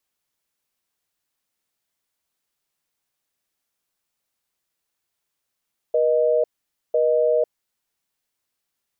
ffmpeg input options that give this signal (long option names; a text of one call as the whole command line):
ffmpeg -f lavfi -i "aevalsrc='0.119*(sin(2*PI*480*t)+sin(2*PI*620*t))*clip(min(mod(t,1),0.5-mod(t,1))/0.005,0,1)':duration=1.75:sample_rate=44100" out.wav